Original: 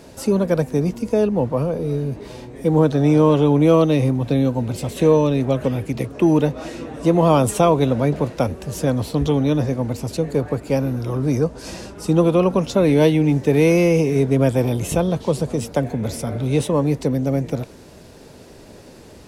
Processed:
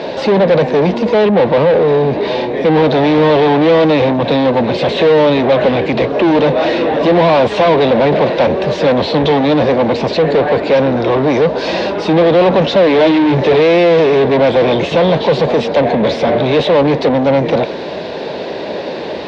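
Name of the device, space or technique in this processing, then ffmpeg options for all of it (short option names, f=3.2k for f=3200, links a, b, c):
overdrive pedal into a guitar cabinet: -filter_complex "[0:a]asettb=1/sr,asplit=3[a][b][c];[a]atrim=end=12.974[d];[b]atrim=start=12.97:end=13.6,asetpts=PTS-STARTPTS,afade=t=in:d=0.004:c=qsin,afade=t=out:st=0.626:d=0.004:c=qsin,asplit=2[e][f];[f]adelay=16,volume=-2.5dB[g];[e][g]amix=inputs=2:normalize=0,atrim=end_sample=27783[h];[c]atrim=start=13.596[i];[d][h]acrossfade=d=0.004:c1=hsin:c2=qsin[j];[j][i]acrossfade=d=0.004:c1=qsin:c2=hsin,asplit=2[k][l];[l]highpass=f=720:p=1,volume=35dB,asoftclip=type=tanh:threshold=-2.5dB[m];[k][m]amix=inputs=2:normalize=0,lowpass=f=1.4k:p=1,volume=-6dB,highpass=79,equalizer=f=110:t=q:w=4:g=-10,equalizer=f=260:t=q:w=4:g=-4,equalizer=f=570:t=q:w=4:g=3,equalizer=f=1.3k:t=q:w=4:g=-8,equalizer=f=3.8k:t=q:w=4:g=6,lowpass=f=4.5k:w=0.5412,lowpass=f=4.5k:w=1.3066"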